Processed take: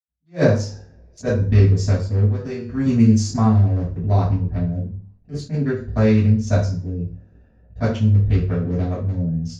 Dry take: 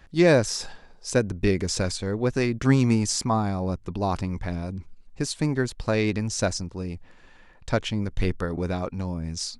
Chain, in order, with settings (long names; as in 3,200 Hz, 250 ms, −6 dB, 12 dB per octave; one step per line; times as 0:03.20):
adaptive Wiener filter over 41 samples
0:02.16–0:02.78: tuned comb filter 97 Hz, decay 0.56 s, harmonics all, mix 70%
convolution reverb RT60 0.45 s, pre-delay 77 ms
level that may rise only so fast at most 320 dB per second
level −10 dB